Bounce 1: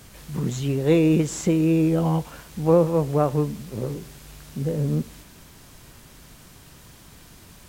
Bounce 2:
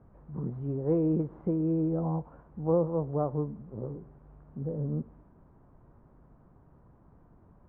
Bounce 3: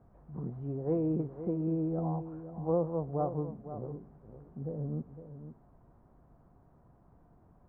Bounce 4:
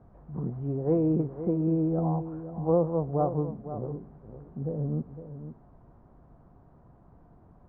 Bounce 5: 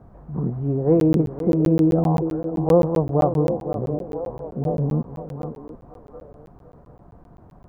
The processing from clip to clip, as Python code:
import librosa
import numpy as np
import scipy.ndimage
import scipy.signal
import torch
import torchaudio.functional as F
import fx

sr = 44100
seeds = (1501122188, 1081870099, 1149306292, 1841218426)

y1 = scipy.signal.sosfilt(scipy.signal.butter(4, 1100.0, 'lowpass', fs=sr, output='sos'), x)
y1 = F.gain(torch.from_numpy(y1), -8.5).numpy()
y2 = fx.peak_eq(y1, sr, hz=710.0, db=7.0, octaves=0.22)
y2 = y2 + 10.0 ** (-11.5 / 20.0) * np.pad(y2, (int(508 * sr / 1000.0), 0))[:len(y2)]
y2 = F.gain(torch.from_numpy(y2), -4.0).numpy()
y3 = fx.air_absorb(y2, sr, metres=170.0)
y3 = F.gain(torch.from_numpy(y3), 6.0).numpy()
y4 = fx.echo_stepped(y3, sr, ms=736, hz=410.0, octaves=0.7, feedback_pct=70, wet_db=-8.0)
y4 = fx.buffer_crackle(y4, sr, first_s=1.0, period_s=0.13, block=512, kind='zero')
y4 = F.gain(torch.from_numpy(y4), 8.0).numpy()